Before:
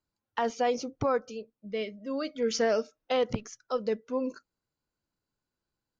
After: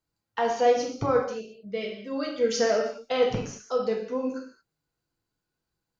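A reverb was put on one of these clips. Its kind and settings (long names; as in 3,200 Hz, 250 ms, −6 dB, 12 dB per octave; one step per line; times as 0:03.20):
reverb whose tail is shaped and stops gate 250 ms falling, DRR −1 dB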